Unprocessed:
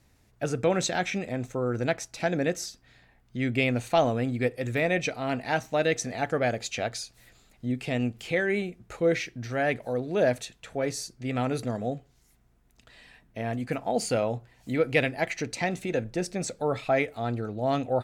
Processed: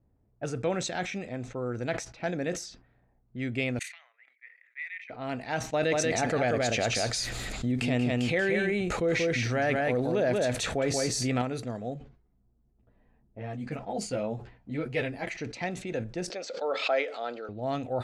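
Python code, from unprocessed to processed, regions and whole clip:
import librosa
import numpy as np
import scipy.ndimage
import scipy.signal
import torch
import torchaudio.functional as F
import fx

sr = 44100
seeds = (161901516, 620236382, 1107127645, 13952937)

y = fx.chain(x, sr, fx.level_steps(step_db=14),
    fx.ladder_highpass(hz=1900.0, resonance_pct=80),
    fx.high_shelf(hz=8000.0, db=8.5), at=(3.79, 5.1))
y = fx.chain(y, sr, fx.echo_single(ms=184, db=-4.0),
    fx.env_flatten(amount_pct=70), at=(5.73, 11.42))
y = fx.chain(y, sr, fx.low_shelf(hz=320.0, db=6.0),
    fx.ensemble(), at=(11.94, 15.29))
y = fx.chain(y, sr, fx.cabinet(low_hz=320.0, low_slope=24, high_hz=6700.0, hz=(350.0, 530.0, 1400.0, 3100.0, 4700.0), db=(-5, 7, 5, 6, 6)),
    fx.pre_swell(db_per_s=84.0), at=(16.3, 17.49))
y = fx.env_lowpass(y, sr, base_hz=620.0, full_db=-26.0)
y = scipy.signal.sosfilt(scipy.signal.butter(2, 9600.0, 'lowpass', fs=sr, output='sos'), y)
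y = fx.sustainer(y, sr, db_per_s=110.0)
y = y * 10.0 ** (-5.0 / 20.0)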